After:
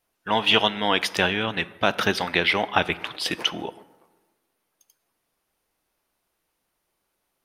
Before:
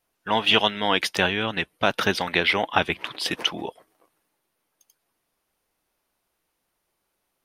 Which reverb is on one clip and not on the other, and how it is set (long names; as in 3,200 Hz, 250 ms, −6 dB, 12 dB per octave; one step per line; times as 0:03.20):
dense smooth reverb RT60 1.3 s, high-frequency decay 0.5×, DRR 15.5 dB